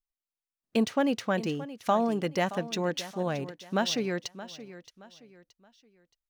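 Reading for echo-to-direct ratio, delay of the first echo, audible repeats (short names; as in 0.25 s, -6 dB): -14.5 dB, 0.623 s, 3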